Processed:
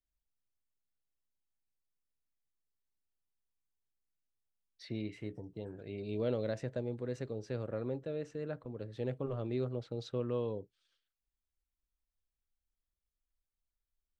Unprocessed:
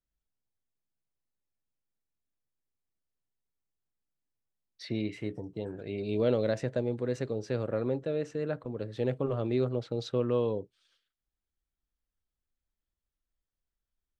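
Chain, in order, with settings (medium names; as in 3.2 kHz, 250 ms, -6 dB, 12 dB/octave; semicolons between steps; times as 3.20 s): bass shelf 74 Hz +8 dB; trim -7.5 dB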